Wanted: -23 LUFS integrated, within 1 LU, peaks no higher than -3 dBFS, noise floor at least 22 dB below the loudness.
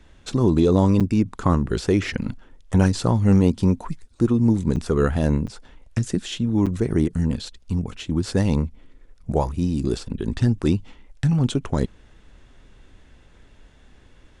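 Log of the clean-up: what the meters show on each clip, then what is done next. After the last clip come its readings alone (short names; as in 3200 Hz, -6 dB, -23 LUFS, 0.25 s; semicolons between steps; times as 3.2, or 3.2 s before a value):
dropouts 4; longest dropout 7.0 ms; loudness -22.0 LUFS; peak -4.0 dBFS; loudness target -23.0 LUFS
-> interpolate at 1/4.76/5.47/6.66, 7 ms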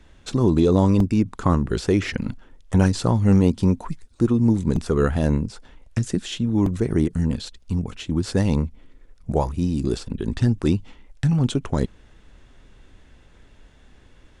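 dropouts 0; loudness -22.0 LUFS; peak -4.0 dBFS; loudness target -23.0 LUFS
-> gain -1 dB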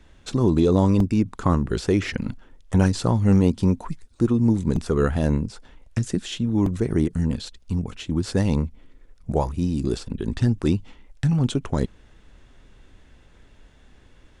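loudness -23.0 LUFS; peak -5.0 dBFS; noise floor -53 dBFS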